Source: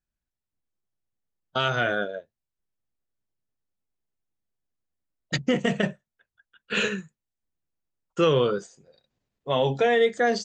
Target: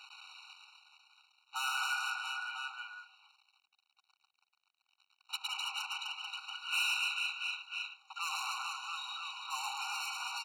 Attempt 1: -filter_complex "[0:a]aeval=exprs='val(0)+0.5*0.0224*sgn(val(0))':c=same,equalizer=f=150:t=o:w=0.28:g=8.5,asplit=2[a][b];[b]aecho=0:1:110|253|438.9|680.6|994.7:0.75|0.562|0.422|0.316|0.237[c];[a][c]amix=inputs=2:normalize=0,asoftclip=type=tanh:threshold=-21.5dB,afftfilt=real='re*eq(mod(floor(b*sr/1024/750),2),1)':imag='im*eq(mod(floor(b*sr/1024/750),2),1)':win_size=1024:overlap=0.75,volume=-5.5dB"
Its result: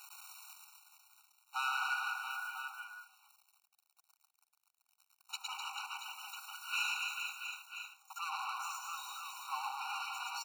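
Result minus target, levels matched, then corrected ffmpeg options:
4000 Hz band -3.0 dB
-filter_complex "[0:a]aeval=exprs='val(0)+0.5*0.0224*sgn(val(0))':c=same,lowpass=f=3.4k:t=q:w=4.2,equalizer=f=150:t=o:w=0.28:g=8.5,asplit=2[a][b];[b]aecho=0:1:110|253|438.9|680.6|994.7:0.75|0.562|0.422|0.316|0.237[c];[a][c]amix=inputs=2:normalize=0,asoftclip=type=tanh:threshold=-21.5dB,afftfilt=real='re*eq(mod(floor(b*sr/1024/750),2),1)':imag='im*eq(mod(floor(b*sr/1024/750),2),1)':win_size=1024:overlap=0.75,volume=-5.5dB"

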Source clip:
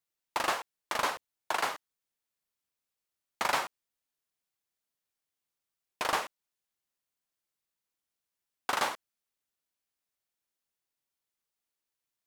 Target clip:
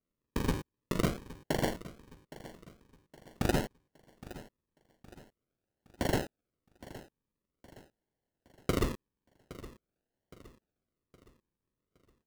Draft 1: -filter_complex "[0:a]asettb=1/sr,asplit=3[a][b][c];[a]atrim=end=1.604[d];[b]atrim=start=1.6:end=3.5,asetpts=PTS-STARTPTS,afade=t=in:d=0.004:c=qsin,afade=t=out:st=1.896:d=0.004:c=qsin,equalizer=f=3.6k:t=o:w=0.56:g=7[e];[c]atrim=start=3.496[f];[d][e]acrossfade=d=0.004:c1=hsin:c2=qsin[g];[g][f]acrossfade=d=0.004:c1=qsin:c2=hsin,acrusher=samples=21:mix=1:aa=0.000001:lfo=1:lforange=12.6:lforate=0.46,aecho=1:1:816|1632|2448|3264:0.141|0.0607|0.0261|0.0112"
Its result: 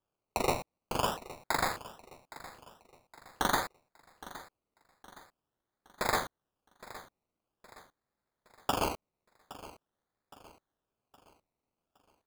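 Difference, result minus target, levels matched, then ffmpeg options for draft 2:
decimation with a swept rate: distortion -31 dB
-filter_complex "[0:a]asettb=1/sr,asplit=3[a][b][c];[a]atrim=end=1.604[d];[b]atrim=start=1.6:end=3.5,asetpts=PTS-STARTPTS,afade=t=in:d=0.004:c=qsin,afade=t=out:st=1.896:d=0.004:c=qsin,equalizer=f=3.6k:t=o:w=0.56:g=7[e];[c]atrim=start=3.496[f];[d][e]acrossfade=d=0.004:c1=hsin:c2=qsin[g];[g][f]acrossfade=d=0.004:c1=qsin:c2=hsin,acrusher=samples=50:mix=1:aa=0.000001:lfo=1:lforange=30:lforate=0.46,aecho=1:1:816|1632|2448|3264:0.141|0.0607|0.0261|0.0112"

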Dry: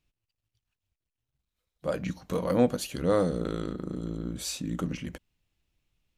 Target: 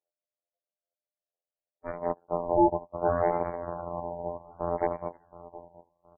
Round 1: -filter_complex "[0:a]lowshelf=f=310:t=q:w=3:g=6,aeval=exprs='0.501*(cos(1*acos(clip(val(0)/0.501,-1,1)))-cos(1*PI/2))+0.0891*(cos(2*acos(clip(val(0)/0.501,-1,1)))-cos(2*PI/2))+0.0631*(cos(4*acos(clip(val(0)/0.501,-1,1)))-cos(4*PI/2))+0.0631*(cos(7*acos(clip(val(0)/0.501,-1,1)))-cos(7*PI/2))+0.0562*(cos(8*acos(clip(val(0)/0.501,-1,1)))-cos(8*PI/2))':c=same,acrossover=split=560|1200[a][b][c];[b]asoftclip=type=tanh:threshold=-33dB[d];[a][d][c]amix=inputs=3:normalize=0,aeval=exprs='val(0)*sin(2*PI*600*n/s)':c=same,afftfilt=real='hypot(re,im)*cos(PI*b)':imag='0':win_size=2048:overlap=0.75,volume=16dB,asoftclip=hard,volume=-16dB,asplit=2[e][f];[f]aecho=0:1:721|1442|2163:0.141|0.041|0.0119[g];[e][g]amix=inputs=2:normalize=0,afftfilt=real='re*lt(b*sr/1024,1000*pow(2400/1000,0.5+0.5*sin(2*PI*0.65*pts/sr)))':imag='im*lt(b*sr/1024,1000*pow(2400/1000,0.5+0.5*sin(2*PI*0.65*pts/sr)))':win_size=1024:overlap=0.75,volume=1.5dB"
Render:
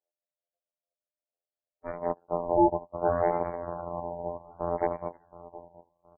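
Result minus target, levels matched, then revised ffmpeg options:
soft clip: distortion +12 dB
-filter_complex "[0:a]lowshelf=f=310:t=q:w=3:g=6,aeval=exprs='0.501*(cos(1*acos(clip(val(0)/0.501,-1,1)))-cos(1*PI/2))+0.0891*(cos(2*acos(clip(val(0)/0.501,-1,1)))-cos(2*PI/2))+0.0631*(cos(4*acos(clip(val(0)/0.501,-1,1)))-cos(4*PI/2))+0.0631*(cos(7*acos(clip(val(0)/0.501,-1,1)))-cos(7*PI/2))+0.0562*(cos(8*acos(clip(val(0)/0.501,-1,1)))-cos(8*PI/2))':c=same,acrossover=split=560|1200[a][b][c];[b]asoftclip=type=tanh:threshold=-22dB[d];[a][d][c]amix=inputs=3:normalize=0,aeval=exprs='val(0)*sin(2*PI*600*n/s)':c=same,afftfilt=real='hypot(re,im)*cos(PI*b)':imag='0':win_size=2048:overlap=0.75,volume=16dB,asoftclip=hard,volume=-16dB,asplit=2[e][f];[f]aecho=0:1:721|1442|2163:0.141|0.041|0.0119[g];[e][g]amix=inputs=2:normalize=0,afftfilt=real='re*lt(b*sr/1024,1000*pow(2400/1000,0.5+0.5*sin(2*PI*0.65*pts/sr)))':imag='im*lt(b*sr/1024,1000*pow(2400/1000,0.5+0.5*sin(2*PI*0.65*pts/sr)))':win_size=1024:overlap=0.75,volume=1.5dB"

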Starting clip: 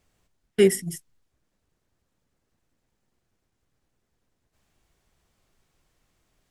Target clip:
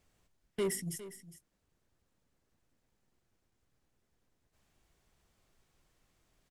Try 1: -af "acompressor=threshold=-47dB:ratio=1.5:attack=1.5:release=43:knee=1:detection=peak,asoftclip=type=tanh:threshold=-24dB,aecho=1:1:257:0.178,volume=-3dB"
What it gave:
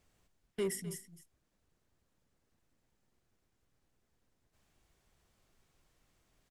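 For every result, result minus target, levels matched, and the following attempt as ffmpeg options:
echo 0.151 s early; compressor: peak gain reduction +3.5 dB
-af "acompressor=threshold=-47dB:ratio=1.5:attack=1.5:release=43:knee=1:detection=peak,asoftclip=type=tanh:threshold=-24dB,aecho=1:1:408:0.178,volume=-3dB"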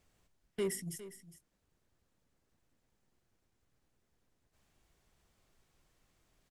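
compressor: peak gain reduction +3.5 dB
-af "acompressor=threshold=-37dB:ratio=1.5:attack=1.5:release=43:knee=1:detection=peak,asoftclip=type=tanh:threshold=-24dB,aecho=1:1:408:0.178,volume=-3dB"

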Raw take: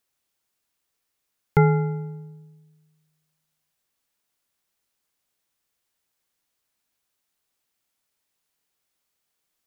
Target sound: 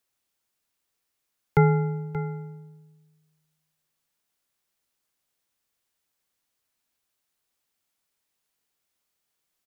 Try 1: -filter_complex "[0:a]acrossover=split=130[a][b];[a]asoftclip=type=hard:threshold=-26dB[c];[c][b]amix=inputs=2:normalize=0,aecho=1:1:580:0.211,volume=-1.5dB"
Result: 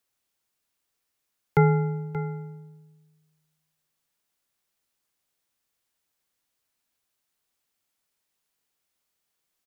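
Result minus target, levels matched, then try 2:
hard clip: distortion +12 dB
-filter_complex "[0:a]acrossover=split=130[a][b];[a]asoftclip=type=hard:threshold=-19.5dB[c];[c][b]amix=inputs=2:normalize=0,aecho=1:1:580:0.211,volume=-1.5dB"

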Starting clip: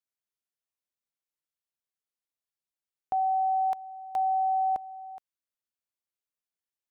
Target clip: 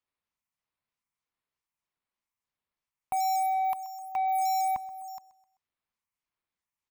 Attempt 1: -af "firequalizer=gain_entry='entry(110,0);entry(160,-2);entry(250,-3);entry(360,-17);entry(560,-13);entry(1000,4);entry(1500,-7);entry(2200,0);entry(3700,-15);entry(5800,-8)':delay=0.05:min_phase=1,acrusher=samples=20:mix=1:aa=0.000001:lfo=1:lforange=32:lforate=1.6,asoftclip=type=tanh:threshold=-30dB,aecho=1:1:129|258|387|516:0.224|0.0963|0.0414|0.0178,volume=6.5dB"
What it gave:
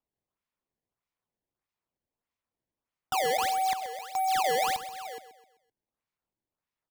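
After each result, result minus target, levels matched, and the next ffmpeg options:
decimation with a swept rate: distortion +19 dB; echo-to-direct +6.5 dB
-af "firequalizer=gain_entry='entry(110,0);entry(160,-2);entry(250,-3);entry(360,-17);entry(560,-13);entry(1000,4);entry(1500,-7);entry(2200,0);entry(3700,-15);entry(5800,-8)':delay=0.05:min_phase=1,acrusher=samples=4:mix=1:aa=0.000001:lfo=1:lforange=6.4:lforate=1.6,asoftclip=type=tanh:threshold=-30dB,aecho=1:1:129|258|387|516:0.224|0.0963|0.0414|0.0178,volume=6.5dB"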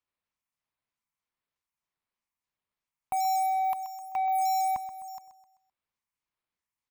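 echo-to-direct +6.5 dB
-af "firequalizer=gain_entry='entry(110,0);entry(160,-2);entry(250,-3);entry(360,-17);entry(560,-13);entry(1000,4);entry(1500,-7);entry(2200,0);entry(3700,-15);entry(5800,-8)':delay=0.05:min_phase=1,acrusher=samples=4:mix=1:aa=0.000001:lfo=1:lforange=6.4:lforate=1.6,asoftclip=type=tanh:threshold=-30dB,aecho=1:1:129|258|387:0.106|0.0455|0.0196,volume=6.5dB"

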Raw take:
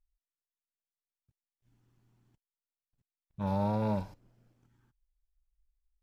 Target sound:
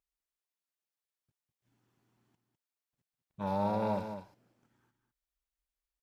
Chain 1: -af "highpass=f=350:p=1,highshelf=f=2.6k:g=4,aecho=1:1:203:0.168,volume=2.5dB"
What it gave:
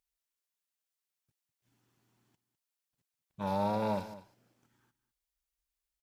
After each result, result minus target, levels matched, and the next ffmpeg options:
echo-to-direct -6.5 dB; 4000 Hz band +4.0 dB
-af "highpass=f=350:p=1,highshelf=f=2.6k:g=4,aecho=1:1:203:0.355,volume=2.5dB"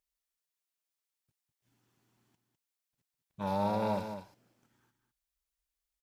4000 Hz band +4.5 dB
-af "highpass=f=350:p=1,highshelf=f=2.6k:g=-3,aecho=1:1:203:0.355,volume=2.5dB"

